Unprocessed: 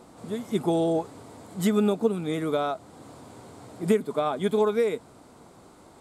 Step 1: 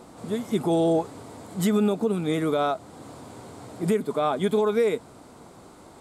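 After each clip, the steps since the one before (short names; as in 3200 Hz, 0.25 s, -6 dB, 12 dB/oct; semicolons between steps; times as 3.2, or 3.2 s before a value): limiter -17.5 dBFS, peak gain reduction 7 dB; gain +3.5 dB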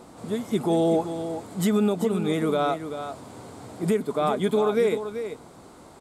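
echo 0.386 s -9.5 dB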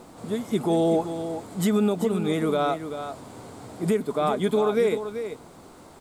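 added noise pink -62 dBFS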